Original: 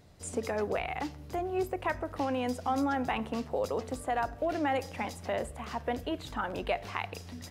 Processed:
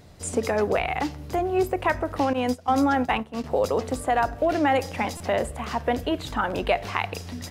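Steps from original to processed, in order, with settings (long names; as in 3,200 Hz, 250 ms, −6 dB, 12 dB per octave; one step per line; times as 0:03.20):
0:02.33–0:03.44: noise gate −31 dBFS, range −15 dB
buffer that repeats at 0:05.17, samples 128, times 10
level +8.5 dB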